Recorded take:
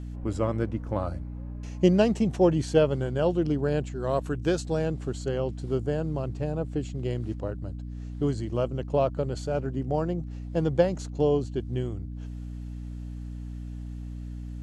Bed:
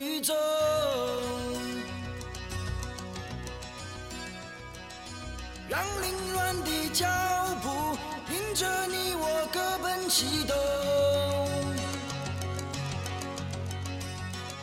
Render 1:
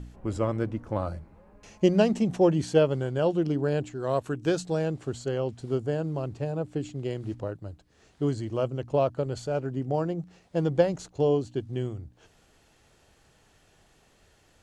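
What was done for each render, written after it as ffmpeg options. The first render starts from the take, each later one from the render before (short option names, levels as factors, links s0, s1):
-af "bandreject=f=60:t=h:w=4,bandreject=f=120:t=h:w=4,bandreject=f=180:t=h:w=4,bandreject=f=240:t=h:w=4,bandreject=f=300:t=h:w=4"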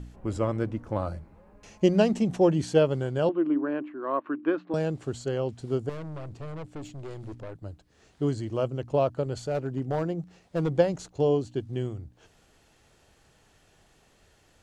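-filter_complex "[0:a]asettb=1/sr,asplit=3[s0][s1][s2];[s0]atrim=end=3.294[s3];[s1]atrim=start=3.29:end=4.74,asetpts=PTS-STARTPTS,afade=t=in:d=0.004:c=qsin,afade=t=out:st=1.446:d=0.004:c=qsin,highpass=f=270:w=0.5412,highpass=f=270:w=1.3066,equalizer=f=300:t=q:w=4:g=8,equalizer=f=450:t=q:w=4:g=-10,equalizer=f=760:t=q:w=4:g=-7,equalizer=f=1100:t=q:w=4:g=8,lowpass=f=2300:w=0.5412,lowpass=f=2300:w=1.3066[s4];[s2]atrim=start=4.736[s5];[s3][s4]acrossfade=d=0.004:c1=hsin:c2=qsin[s6];[s6][s5]acrossfade=d=0.004:c1=qsin:c2=hsin,asettb=1/sr,asplit=3[s7][s8][s9];[s7]atrim=end=5.894[s10];[s8]atrim=start=5.89:end=7.63,asetpts=PTS-STARTPTS,afade=t=in:d=0.004:c=qsin,afade=t=out:st=1.736:d=0.004:c=qsin,aeval=exprs='(tanh(56.2*val(0)+0.4)-tanh(0.4))/56.2':c=same[s11];[s9]atrim=start=7.626[s12];[s10][s11]acrossfade=d=0.004:c1=hsin:c2=qsin[s13];[s13][s12]acrossfade=d=0.004:c1=qsin:c2=hsin,asettb=1/sr,asplit=3[s14][s15][s16];[s14]atrim=end=9.364[s17];[s15]atrim=start=9.36:end=10.72,asetpts=PTS-STARTPTS,afade=t=in:d=0.004:c=qsin,afade=t=out:st=1.356:d=0.004:c=qsin,asoftclip=type=hard:threshold=0.0841[s18];[s16]atrim=start=10.716[s19];[s17][s18]acrossfade=d=0.004:c1=hsin:c2=qsin[s20];[s20][s19]acrossfade=d=0.004:c1=qsin:c2=hsin"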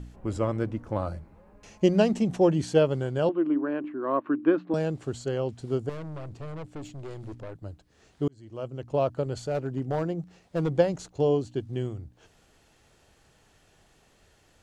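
-filter_complex "[0:a]asettb=1/sr,asplit=3[s0][s1][s2];[s0]atrim=end=3.844[s3];[s1]atrim=start=3.84:end=4.74,asetpts=PTS-STARTPTS,afade=t=in:d=0.004:c=qsin,afade=t=out:st=0.896:d=0.004:c=qsin,lowshelf=f=290:g=10[s4];[s2]atrim=start=4.736[s5];[s3][s4]acrossfade=d=0.004:c1=hsin:c2=qsin[s6];[s6][s5]acrossfade=d=0.004:c1=qsin:c2=hsin,asplit=2[s7][s8];[s7]atrim=end=8.28,asetpts=PTS-STARTPTS,afade=t=out:st=8.276:d=0.004:c=hsin[s9];[s8]atrim=start=8.28,asetpts=PTS-STARTPTS,afade=t=in:d=0.83[s10];[s9][s10]concat=n=2:v=0:a=1"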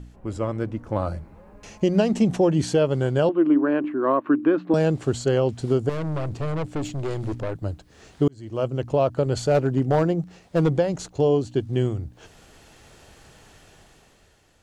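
-af "dynaudnorm=f=180:g=11:m=3.76,alimiter=limit=0.316:level=0:latency=1:release=211"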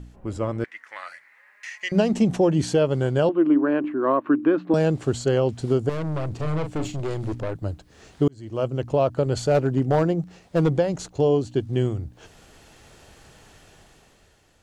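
-filter_complex "[0:a]asettb=1/sr,asplit=3[s0][s1][s2];[s0]atrim=end=0.644[s3];[s1]atrim=start=0.64:end=1.92,asetpts=PTS-STARTPTS,afade=t=in:d=0.004:c=qsin,afade=t=out:st=1.276:d=0.004:c=qsin,highpass=f=1900:t=q:w=9.8[s4];[s2]atrim=start=1.916[s5];[s3][s4]acrossfade=d=0.004:c1=hsin:c2=qsin[s6];[s6][s5]acrossfade=d=0.004:c1=qsin:c2=hsin,asettb=1/sr,asplit=3[s7][s8][s9];[s7]atrim=end=6.354[s10];[s8]atrim=start=6.35:end=7,asetpts=PTS-STARTPTS,afade=t=in:d=0.004:c=qsin,afade=t=out:st=0.646:d=0.004:c=qsin,asplit=2[s11][s12];[s12]adelay=39,volume=0.398[s13];[s11][s13]amix=inputs=2:normalize=0,atrim=end_sample=28665[s14];[s9]atrim=start=6.996[s15];[s10][s14]acrossfade=d=0.004:c1=hsin:c2=qsin[s16];[s16][s15]acrossfade=d=0.004:c1=qsin:c2=hsin"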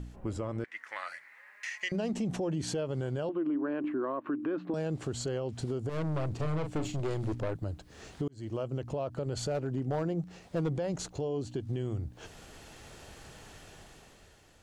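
-af "alimiter=limit=0.1:level=0:latency=1:release=106,acompressor=threshold=0.0126:ratio=1.5"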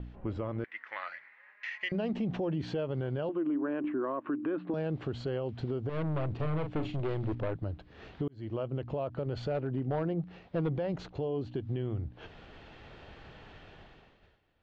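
-af "agate=range=0.0224:threshold=0.00282:ratio=3:detection=peak,lowpass=f=3600:w=0.5412,lowpass=f=3600:w=1.3066"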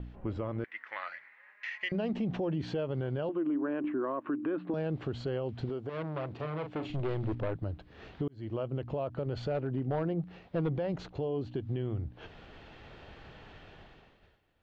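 -filter_complex "[0:a]asettb=1/sr,asplit=3[s0][s1][s2];[s0]atrim=end=5.694[s3];[s1]atrim=start=5.69:end=6.9,asetpts=PTS-STARTPTS,afade=t=in:d=0.004:c=qsin,afade=t=out:st=1.206:d=0.004:c=qsin,highpass=f=280:p=1[s4];[s2]atrim=start=6.896[s5];[s3][s4]acrossfade=d=0.004:c1=hsin:c2=qsin[s6];[s6][s5]acrossfade=d=0.004:c1=qsin:c2=hsin"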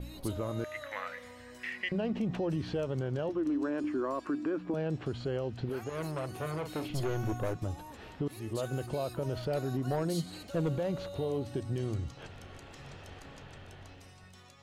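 -filter_complex "[1:a]volume=0.126[s0];[0:a][s0]amix=inputs=2:normalize=0"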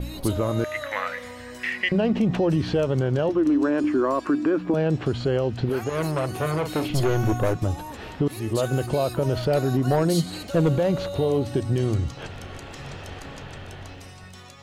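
-af "volume=3.55"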